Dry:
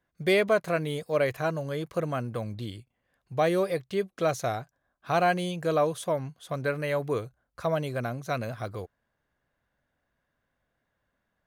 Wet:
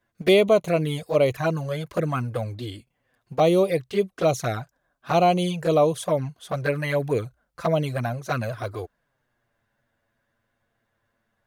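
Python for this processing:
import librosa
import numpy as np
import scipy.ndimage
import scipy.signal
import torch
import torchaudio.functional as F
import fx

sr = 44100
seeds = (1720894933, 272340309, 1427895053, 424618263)

y = fx.env_flanger(x, sr, rest_ms=8.9, full_db=-22.5)
y = F.gain(torch.from_numpy(y), 7.5).numpy()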